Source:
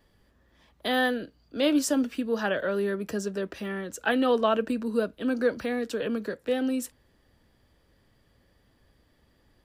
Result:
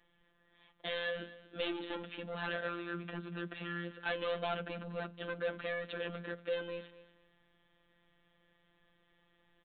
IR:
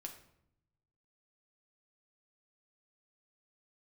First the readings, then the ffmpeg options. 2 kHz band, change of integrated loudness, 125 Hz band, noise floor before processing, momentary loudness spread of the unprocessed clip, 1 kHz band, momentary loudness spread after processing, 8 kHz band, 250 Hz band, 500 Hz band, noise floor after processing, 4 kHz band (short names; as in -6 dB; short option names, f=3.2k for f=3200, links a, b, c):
-7.5 dB, -12.0 dB, -3.5 dB, -66 dBFS, 10 LU, -11.0 dB, 6 LU, under -40 dB, -17.5 dB, -11.5 dB, -73 dBFS, -8.0 dB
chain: -filter_complex "[0:a]lowpass=f=1.9k:p=1,bandreject=f=50:t=h:w=6,bandreject=f=100:t=h:w=6,bandreject=f=150:t=h:w=6,bandreject=f=200:t=h:w=6,bandreject=f=250:t=h:w=6,bandreject=f=300:t=h:w=6,crystalizer=i=10:c=0,aresample=8000,asoftclip=type=tanh:threshold=-23dB,aresample=44100,afftfilt=real='hypot(re,im)*cos(PI*b)':imag='0':win_size=1024:overlap=0.75,asplit=2[a][b];[b]aecho=0:1:238|476:0.126|0.0277[c];[a][c]amix=inputs=2:normalize=0,volume=-5.5dB"